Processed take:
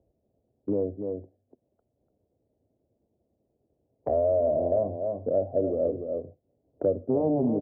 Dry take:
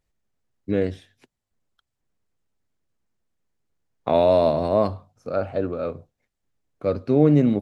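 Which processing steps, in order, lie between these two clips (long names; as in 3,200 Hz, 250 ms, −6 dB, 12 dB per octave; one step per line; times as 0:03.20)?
wavefolder on the positive side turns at −15 dBFS
high-pass filter 99 Hz 12 dB per octave
speech leveller 2 s
Chebyshev low-pass filter 650 Hz, order 4
parametric band 170 Hz −9 dB 0.95 octaves
on a send: single-tap delay 291 ms −9 dB
on the sum: multiband upward and downward compressor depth 70%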